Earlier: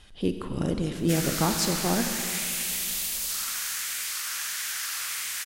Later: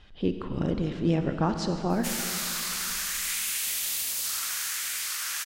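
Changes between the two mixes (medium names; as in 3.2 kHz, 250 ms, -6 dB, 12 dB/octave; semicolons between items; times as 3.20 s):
speech: add distance through air 160 m; background: entry +0.95 s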